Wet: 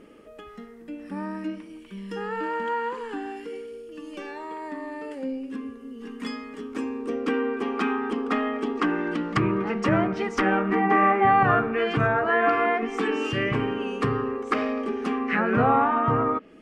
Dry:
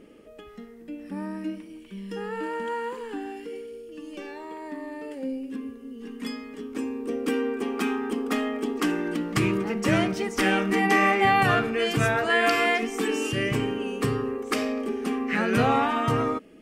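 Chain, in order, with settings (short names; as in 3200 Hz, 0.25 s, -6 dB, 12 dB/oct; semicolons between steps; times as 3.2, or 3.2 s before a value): bell 1200 Hz +6 dB 1.2 oct; treble ducked by the level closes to 1400 Hz, closed at -18 dBFS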